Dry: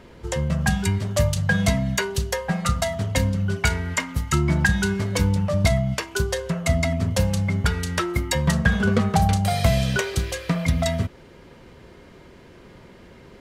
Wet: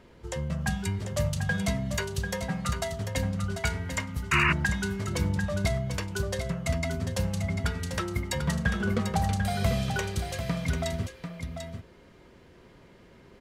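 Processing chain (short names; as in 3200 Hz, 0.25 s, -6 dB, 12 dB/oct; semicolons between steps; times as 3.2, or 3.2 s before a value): echo 0.743 s -7.5 dB; painted sound noise, 4.31–4.53, 930–2900 Hz -16 dBFS; gain -8 dB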